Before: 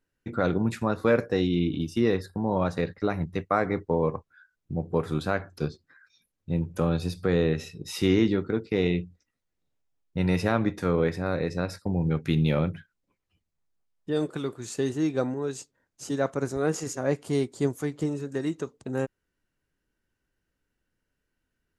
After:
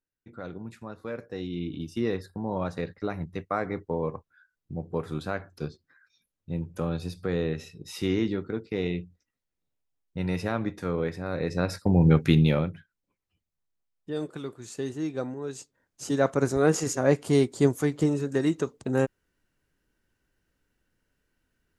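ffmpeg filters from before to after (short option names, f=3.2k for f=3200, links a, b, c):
-af "volume=17dB,afade=t=in:st=1.18:d=0.81:silence=0.334965,afade=t=in:st=11.29:d=0.82:silence=0.251189,afade=t=out:st=12.11:d=0.6:silence=0.237137,afade=t=in:st=15.4:d=1.04:silence=0.334965"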